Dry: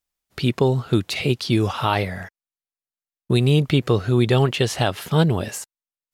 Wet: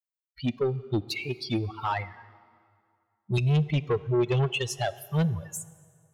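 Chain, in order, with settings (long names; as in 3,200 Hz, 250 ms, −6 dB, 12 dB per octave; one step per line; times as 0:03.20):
spectral dynamics exaggerated over time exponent 3
0:03.37–0:04.59: EQ curve with evenly spaced ripples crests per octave 0.75, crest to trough 12 dB
soft clipping −19.5 dBFS, distortion −9 dB
0:01.20–0:01.77: notch comb filter 1,000 Hz
dense smooth reverb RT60 2.2 s, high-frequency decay 0.75×, DRR 17 dB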